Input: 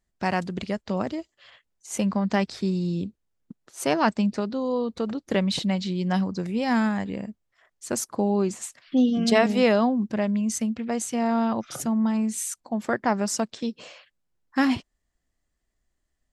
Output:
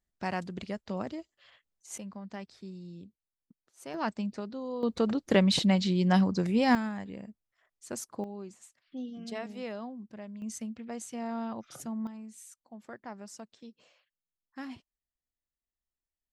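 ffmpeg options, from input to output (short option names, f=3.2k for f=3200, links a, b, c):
-af "asetnsamples=n=441:p=0,asendcmd='1.98 volume volume -18.5dB;3.94 volume volume -10.5dB;4.83 volume volume 0.5dB;6.75 volume volume -10.5dB;8.24 volume volume -19dB;10.42 volume volume -12dB;12.07 volume volume -20dB',volume=-8dB"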